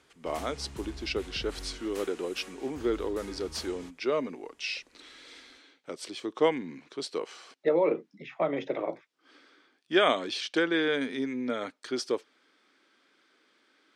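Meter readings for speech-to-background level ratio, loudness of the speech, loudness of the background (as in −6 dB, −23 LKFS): 14.5 dB, −31.5 LKFS, −46.0 LKFS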